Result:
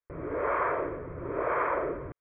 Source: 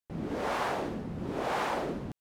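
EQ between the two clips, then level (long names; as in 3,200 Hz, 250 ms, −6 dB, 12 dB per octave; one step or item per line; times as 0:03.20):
Chebyshev low-pass with heavy ripple 3,200 Hz, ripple 6 dB
parametric band 1,200 Hz +2.5 dB 0.77 octaves
phaser with its sweep stopped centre 800 Hz, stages 6
+8.5 dB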